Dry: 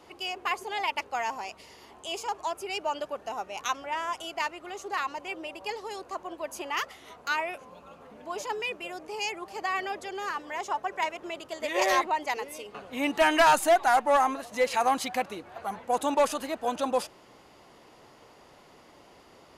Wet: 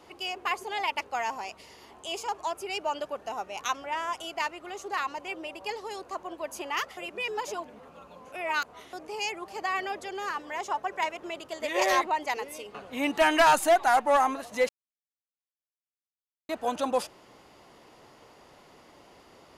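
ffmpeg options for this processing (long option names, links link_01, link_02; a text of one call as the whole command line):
ffmpeg -i in.wav -filter_complex "[0:a]asplit=5[link_01][link_02][link_03][link_04][link_05];[link_01]atrim=end=6.972[link_06];[link_02]atrim=start=6.968:end=8.932,asetpts=PTS-STARTPTS,areverse[link_07];[link_03]atrim=start=8.928:end=14.69,asetpts=PTS-STARTPTS,afade=type=out:start_time=5.758:duration=0.004:curve=hsin[link_08];[link_04]atrim=start=14.69:end=16.49,asetpts=PTS-STARTPTS,volume=0[link_09];[link_05]atrim=start=16.49,asetpts=PTS-STARTPTS,afade=type=in:duration=0.004:curve=hsin[link_10];[link_06][link_07]acrossfade=duration=0.004:curve1=hsin:curve2=hsin[link_11];[link_08][link_09][link_10]concat=n=3:v=0:a=1[link_12];[link_11][link_12]acrossfade=duration=0.004:curve1=hsin:curve2=hsin" out.wav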